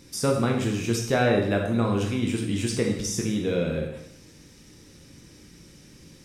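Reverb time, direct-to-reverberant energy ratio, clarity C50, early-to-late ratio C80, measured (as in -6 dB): 0.75 s, 0.5 dB, 5.0 dB, 7.5 dB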